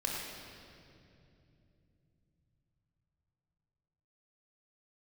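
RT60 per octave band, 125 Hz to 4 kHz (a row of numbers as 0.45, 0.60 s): 5.8, 4.4, 3.3, 2.3, 2.3, 2.1 s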